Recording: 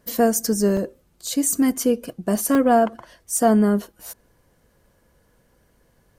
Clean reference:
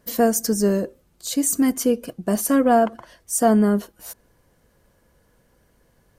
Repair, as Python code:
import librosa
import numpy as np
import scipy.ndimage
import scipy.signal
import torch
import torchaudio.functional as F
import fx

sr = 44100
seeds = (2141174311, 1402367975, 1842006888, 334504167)

y = fx.fix_interpolate(x, sr, at_s=(0.77, 2.55, 3.37), length_ms=1.8)